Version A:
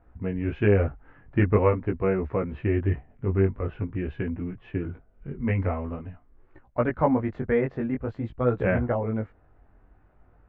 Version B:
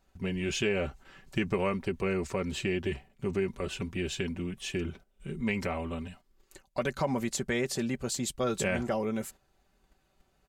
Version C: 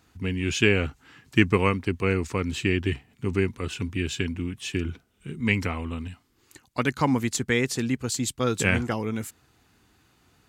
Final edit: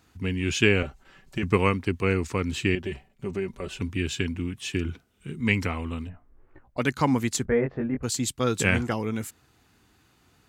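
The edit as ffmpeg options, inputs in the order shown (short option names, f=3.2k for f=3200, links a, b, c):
-filter_complex "[1:a]asplit=2[a][b];[0:a]asplit=2[c][d];[2:a]asplit=5[e][f][g][h][i];[e]atrim=end=0.832[j];[a]atrim=start=0.828:end=1.432[k];[f]atrim=start=1.428:end=2.752[l];[b]atrim=start=2.748:end=3.812[m];[g]atrim=start=3.808:end=6.1[n];[c]atrim=start=6.04:end=6.82[o];[h]atrim=start=6.76:end=7.452[p];[d]atrim=start=7.448:end=8.032[q];[i]atrim=start=8.028[r];[j][k]acrossfade=d=0.004:c1=hsin:c2=hsin[s];[s][l]acrossfade=d=0.004:c1=hsin:c2=hsin[t];[t][m]acrossfade=d=0.004:c1=hsin:c2=hsin[u];[u][n]acrossfade=d=0.004:c1=hsin:c2=hsin[v];[v][o]acrossfade=d=0.06:c1=tri:c2=tri[w];[w][p]acrossfade=d=0.06:c1=tri:c2=tri[x];[x][q]acrossfade=d=0.004:c1=hsin:c2=hsin[y];[y][r]acrossfade=d=0.004:c1=hsin:c2=hsin"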